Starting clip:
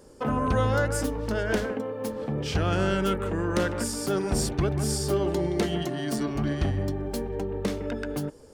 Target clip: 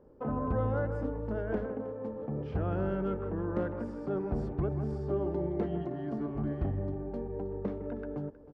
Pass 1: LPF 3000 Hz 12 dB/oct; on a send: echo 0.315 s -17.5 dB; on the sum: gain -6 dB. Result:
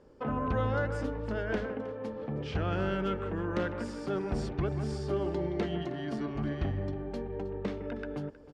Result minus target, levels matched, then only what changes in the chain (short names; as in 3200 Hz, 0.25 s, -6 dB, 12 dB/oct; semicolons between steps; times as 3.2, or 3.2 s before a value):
4000 Hz band +16.5 dB
change: LPF 1000 Hz 12 dB/oct